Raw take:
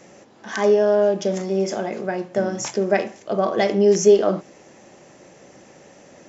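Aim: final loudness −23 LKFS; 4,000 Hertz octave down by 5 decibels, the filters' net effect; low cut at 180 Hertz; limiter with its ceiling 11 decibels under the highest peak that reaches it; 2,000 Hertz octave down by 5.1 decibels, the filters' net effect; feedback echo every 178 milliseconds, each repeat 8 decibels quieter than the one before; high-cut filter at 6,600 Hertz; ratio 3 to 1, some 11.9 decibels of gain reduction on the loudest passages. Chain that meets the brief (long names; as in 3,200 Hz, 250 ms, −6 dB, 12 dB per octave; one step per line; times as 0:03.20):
high-pass filter 180 Hz
low-pass filter 6,600 Hz
parametric band 2,000 Hz −5.5 dB
parametric band 4,000 Hz −4.5 dB
downward compressor 3 to 1, threshold −25 dBFS
brickwall limiter −24.5 dBFS
repeating echo 178 ms, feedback 40%, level −8 dB
level +10 dB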